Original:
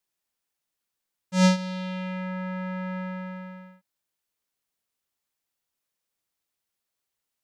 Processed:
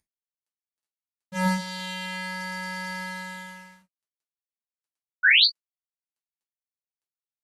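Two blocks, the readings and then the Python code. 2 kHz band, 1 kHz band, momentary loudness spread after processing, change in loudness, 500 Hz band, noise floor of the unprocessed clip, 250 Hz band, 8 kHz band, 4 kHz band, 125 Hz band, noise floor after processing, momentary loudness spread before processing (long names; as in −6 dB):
+13.5 dB, +2.0 dB, 20 LU, +4.5 dB, −6.5 dB, −84 dBFS, −5.5 dB, −1.5 dB, +14.5 dB, can't be measured, below −85 dBFS, 17 LU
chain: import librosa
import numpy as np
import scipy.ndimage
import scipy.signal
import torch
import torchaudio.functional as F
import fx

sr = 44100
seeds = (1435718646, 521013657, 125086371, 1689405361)

y = fx.cvsd(x, sr, bps=64000)
y = fx.dynamic_eq(y, sr, hz=4700.0, q=0.71, threshold_db=-51.0, ratio=4.0, max_db=4)
y = fx.spec_paint(y, sr, seeds[0], shape='rise', start_s=5.23, length_s=0.22, low_hz=1400.0, high_hz=4800.0, level_db=-22.0)
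y = fx.rev_gated(y, sr, seeds[1], gate_ms=80, shape='falling', drr_db=-4.5)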